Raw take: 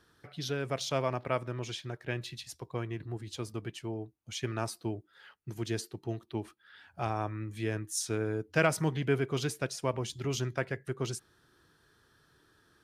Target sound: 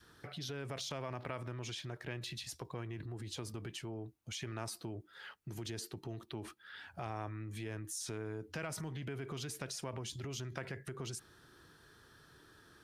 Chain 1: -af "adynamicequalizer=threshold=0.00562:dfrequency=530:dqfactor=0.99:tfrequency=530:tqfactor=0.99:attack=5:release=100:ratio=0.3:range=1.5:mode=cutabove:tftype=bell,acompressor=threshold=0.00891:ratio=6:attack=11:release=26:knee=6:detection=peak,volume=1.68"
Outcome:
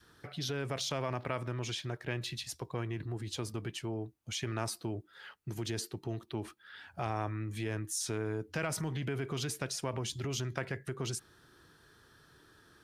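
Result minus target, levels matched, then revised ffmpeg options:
compression: peak gain reduction -6.5 dB
-af "adynamicequalizer=threshold=0.00562:dfrequency=530:dqfactor=0.99:tfrequency=530:tqfactor=0.99:attack=5:release=100:ratio=0.3:range=1.5:mode=cutabove:tftype=bell,acompressor=threshold=0.00355:ratio=6:attack=11:release=26:knee=6:detection=peak,volume=1.68"

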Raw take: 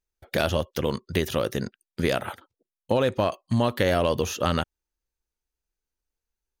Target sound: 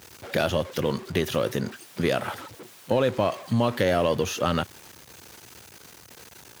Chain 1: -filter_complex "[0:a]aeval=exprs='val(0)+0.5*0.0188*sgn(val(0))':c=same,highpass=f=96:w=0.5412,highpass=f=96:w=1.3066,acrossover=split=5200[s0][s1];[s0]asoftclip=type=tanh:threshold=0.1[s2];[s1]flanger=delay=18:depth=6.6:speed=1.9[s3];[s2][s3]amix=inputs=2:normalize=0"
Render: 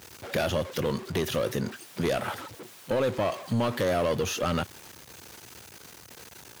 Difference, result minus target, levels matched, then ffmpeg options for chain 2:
saturation: distortion +15 dB
-filter_complex "[0:a]aeval=exprs='val(0)+0.5*0.0188*sgn(val(0))':c=same,highpass=f=96:w=0.5412,highpass=f=96:w=1.3066,acrossover=split=5200[s0][s1];[s0]asoftclip=type=tanh:threshold=0.398[s2];[s1]flanger=delay=18:depth=6.6:speed=1.9[s3];[s2][s3]amix=inputs=2:normalize=0"

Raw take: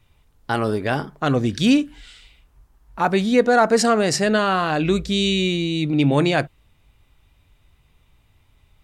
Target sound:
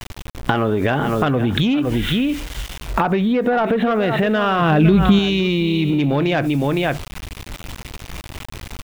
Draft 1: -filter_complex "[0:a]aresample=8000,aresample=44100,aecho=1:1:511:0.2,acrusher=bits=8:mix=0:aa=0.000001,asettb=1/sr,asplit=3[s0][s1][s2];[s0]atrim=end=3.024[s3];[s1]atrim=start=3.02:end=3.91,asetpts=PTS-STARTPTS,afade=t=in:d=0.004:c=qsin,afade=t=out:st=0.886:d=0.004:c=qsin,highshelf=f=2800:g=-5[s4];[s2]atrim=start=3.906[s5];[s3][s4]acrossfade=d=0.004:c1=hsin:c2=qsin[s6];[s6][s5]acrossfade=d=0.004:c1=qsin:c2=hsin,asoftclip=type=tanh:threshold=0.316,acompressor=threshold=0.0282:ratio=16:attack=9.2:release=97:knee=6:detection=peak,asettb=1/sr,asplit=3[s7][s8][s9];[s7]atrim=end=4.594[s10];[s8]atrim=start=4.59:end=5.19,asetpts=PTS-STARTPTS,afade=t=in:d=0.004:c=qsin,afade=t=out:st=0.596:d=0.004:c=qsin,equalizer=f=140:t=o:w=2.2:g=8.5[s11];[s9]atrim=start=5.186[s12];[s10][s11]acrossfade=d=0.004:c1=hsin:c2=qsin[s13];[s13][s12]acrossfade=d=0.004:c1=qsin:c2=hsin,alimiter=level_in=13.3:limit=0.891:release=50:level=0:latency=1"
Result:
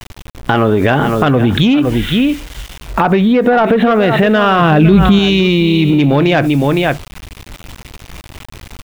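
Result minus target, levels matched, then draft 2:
compression: peak gain reduction -7 dB
-filter_complex "[0:a]aresample=8000,aresample=44100,aecho=1:1:511:0.2,acrusher=bits=8:mix=0:aa=0.000001,asettb=1/sr,asplit=3[s0][s1][s2];[s0]atrim=end=3.024[s3];[s1]atrim=start=3.02:end=3.91,asetpts=PTS-STARTPTS,afade=t=in:d=0.004:c=qsin,afade=t=out:st=0.886:d=0.004:c=qsin,highshelf=f=2800:g=-5[s4];[s2]atrim=start=3.906[s5];[s3][s4]acrossfade=d=0.004:c1=hsin:c2=qsin[s6];[s6][s5]acrossfade=d=0.004:c1=qsin:c2=hsin,asoftclip=type=tanh:threshold=0.316,acompressor=threshold=0.0119:ratio=16:attack=9.2:release=97:knee=6:detection=peak,asettb=1/sr,asplit=3[s7][s8][s9];[s7]atrim=end=4.594[s10];[s8]atrim=start=4.59:end=5.19,asetpts=PTS-STARTPTS,afade=t=in:d=0.004:c=qsin,afade=t=out:st=0.596:d=0.004:c=qsin,equalizer=f=140:t=o:w=2.2:g=8.5[s11];[s9]atrim=start=5.186[s12];[s10][s11]acrossfade=d=0.004:c1=hsin:c2=qsin[s13];[s13][s12]acrossfade=d=0.004:c1=qsin:c2=hsin,alimiter=level_in=13.3:limit=0.891:release=50:level=0:latency=1"

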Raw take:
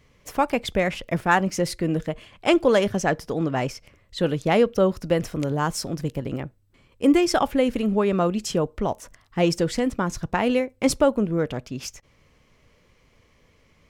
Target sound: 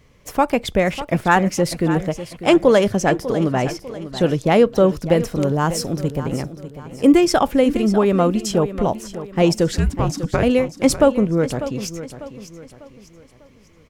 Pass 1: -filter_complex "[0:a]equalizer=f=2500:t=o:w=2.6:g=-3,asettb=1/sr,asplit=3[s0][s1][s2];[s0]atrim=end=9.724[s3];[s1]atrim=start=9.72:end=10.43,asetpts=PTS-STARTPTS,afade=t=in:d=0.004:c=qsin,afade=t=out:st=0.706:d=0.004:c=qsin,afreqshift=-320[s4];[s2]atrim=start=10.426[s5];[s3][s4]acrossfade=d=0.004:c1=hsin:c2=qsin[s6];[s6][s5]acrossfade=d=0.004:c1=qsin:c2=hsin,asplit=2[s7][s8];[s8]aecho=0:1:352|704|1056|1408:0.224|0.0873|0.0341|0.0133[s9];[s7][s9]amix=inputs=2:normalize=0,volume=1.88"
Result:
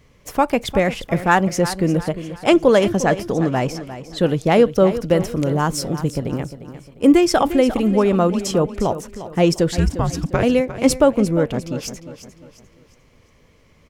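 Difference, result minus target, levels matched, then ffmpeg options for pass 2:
echo 245 ms early
-filter_complex "[0:a]equalizer=f=2500:t=o:w=2.6:g=-3,asettb=1/sr,asplit=3[s0][s1][s2];[s0]atrim=end=9.724[s3];[s1]atrim=start=9.72:end=10.43,asetpts=PTS-STARTPTS,afade=t=in:d=0.004:c=qsin,afade=t=out:st=0.706:d=0.004:c=qsin,afreqshift=-320[s4];[s2]atrim=start=10.426[s5];[s3][s4]acrossfade=d=0.004:c1=hsin:c2=qsin[s6];[s6][s5]acrossfade=d=0.004:c1=qsin:c2=hsin,asplit=2[s7][s8];[s8]aecho=0:1:597|1194|1791|2388:0.224|0.0873|0.0341|0.0133[s9];[s7][s9]amix=inputs=2:normalize=0,volume=1.88"

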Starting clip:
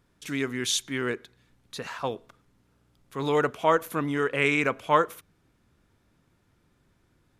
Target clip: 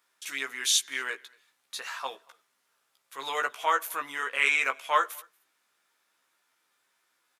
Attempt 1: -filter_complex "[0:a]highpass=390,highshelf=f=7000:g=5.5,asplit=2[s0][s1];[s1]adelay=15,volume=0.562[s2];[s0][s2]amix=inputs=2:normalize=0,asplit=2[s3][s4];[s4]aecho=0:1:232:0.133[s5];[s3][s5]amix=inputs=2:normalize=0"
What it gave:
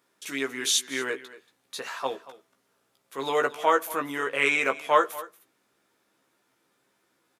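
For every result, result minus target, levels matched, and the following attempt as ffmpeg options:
500 Hz band +8.5 dB; echo-to-direct +11 dB
-filter_complex "[0:a]highpass=1000,highshelf=f=7000:g=5.5,asplit=2[s0][s1];[s1]adelay=15,volume=0.562[s2];[s0][s2]amix=inputs=2:normalize=0,asplit=2[s3][s4];[s4]aecho=0:1:232:0.133[s5];[s3][s5]amix=inputs=2:normalize=0"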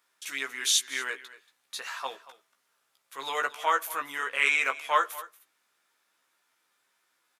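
echo-to-direct +11 dB
-filter_complex "[0:a]highpass=1000,highshelf=f=7000:g=5.5,asplit=2[s0][s1];[s1]adelay=15,volume=0.562[s2];[s0][s2]amix=inputs=2:normalize=0,asplit=2[s3][s4];[s4]aecho=0:1:232:0.0376[s5];[s3][s5]amix=inputs=2:normalize=0"

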